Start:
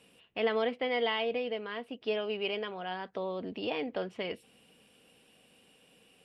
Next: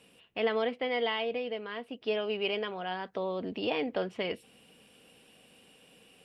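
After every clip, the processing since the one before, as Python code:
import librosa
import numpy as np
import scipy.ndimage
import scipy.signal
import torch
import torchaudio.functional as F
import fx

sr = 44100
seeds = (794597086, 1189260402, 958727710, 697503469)

y = fx.rider(x, sr, range_db=5, speed_s=2.0)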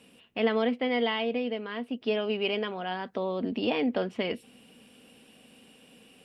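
y = fx.peak_eq(x, sr, hz=240.0, db=9.5, octaves=0.39)
y = y * librosa.db_to_amplitude(2.0)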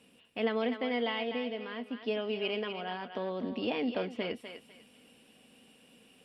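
y = fx.echo_thinned(x, sr, ms=249, feedback_pct=29, hz=650.0, wet_db=-7.0)
y = y * librosa.db_to_amplitude(-5.0)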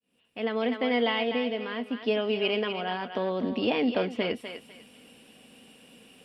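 y = fx.fade_in_head(x, sr, length_s=0.9)
y = y * librosa.db_to_amplitude(6.5)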